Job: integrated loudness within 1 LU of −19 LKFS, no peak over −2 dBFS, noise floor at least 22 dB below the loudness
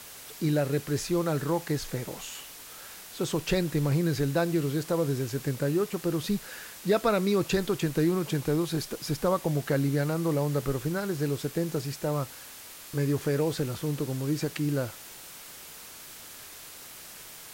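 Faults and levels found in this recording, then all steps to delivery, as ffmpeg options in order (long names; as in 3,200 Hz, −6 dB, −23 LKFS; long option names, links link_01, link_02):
background noise floor −46 dBFS; target noise floor −51 dBFS; integrated loudness −29.0 LKFS; sample peak −12.5 dBFS; target loudness −19.0 LKFS
→ -af "afftdn=noise_reduction=6:noise_floor=-46"
-af "volume=10dB"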